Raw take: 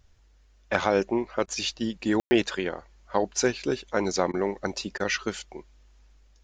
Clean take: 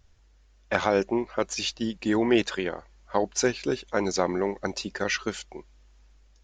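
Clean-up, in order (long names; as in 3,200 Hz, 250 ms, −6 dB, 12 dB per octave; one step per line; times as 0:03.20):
ambience match 0:02.20–0:02.31
repair the gap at 0:01.46/0:04.32/0:04.98, 17 ms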